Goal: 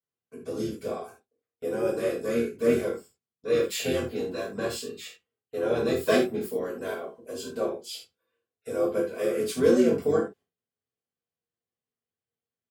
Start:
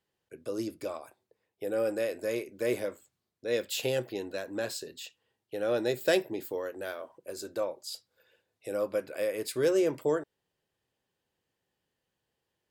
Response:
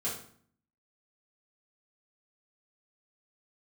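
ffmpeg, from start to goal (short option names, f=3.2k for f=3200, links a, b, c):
-filter_complex "[0:a]asplit=2[a][b];[b]asetrate=29433,aresample=44100,atempo=1.49831,volume=-4dB[c];[a][c]amix=inputs=2:normalize=0,agate=range=-17dB:threshold=-55dB:ratio=16:detection=peak[d];[1:a]atrim=start_sample=2205,atrim=end_sample=4410[e];[d][e]afir=irnorm=-1:irlink=0,volume=-2dB"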